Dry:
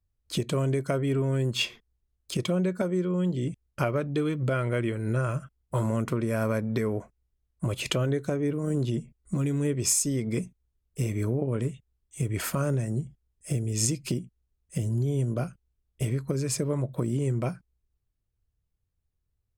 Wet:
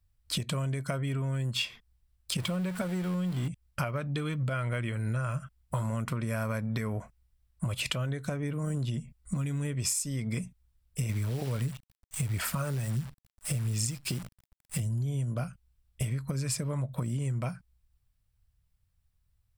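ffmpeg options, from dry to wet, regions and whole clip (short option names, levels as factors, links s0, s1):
-filter_complex "[0:a]asettb=1/sr,asplit=3[s0][s1][s2];[s0]atrim=end=2.384[s3];[s1]atrim=start=2.38:end=3.48,asetpts=PTS-STARTPTS,afade=t=in:d=0.004:c=qsin,afade=t=out:st=1.096:d=0.004:c=qsin,aeval=exprs='val(0)+0.5*0.0168*sgn(val(0))':c=same,equalizer=f=5600:t=o:w=0.38:g=-3[s4];[s2]atrim=start=3.476[s5];[s3][s4]acrossfade=d=0.004:c1=hsin:c2=qsin[s6];[s6][s5]acrossfade=d=0.004:c1=qsin:c2=hsin,asettb=1/sr,asplit=3[s7][s8][s9];[s7]atrim=end=11.094[s10];[s8]atrim=start=11.09:end=14.8,asetpts=PTS-STARTPTS,afade=t=in:d=0.004:c=qsin,afade=t=out:st=3.706:d=0.004:c=qsin,aphaser=in_gain=1:out_gain=1:delay=2.6:decay=0.37:speed=1.5:type=sinusoidal,acrusher=bits=8:dc=4:mix=0:aa=0.000001[s11];[s9]atrim=start=14.796[s12];[s10][s11]acrossfade=d=0.004:c1=hsin:c2=qsin[s13];[s13][s12]acrossfade=d=0.004:c1=qsin:c2=hsin,equalizer=f=370:w=1.3:g=-13.5,bandreject=f=6500:w=11,acompressor=threshold=0.0141:ratio=4,volume=2.24"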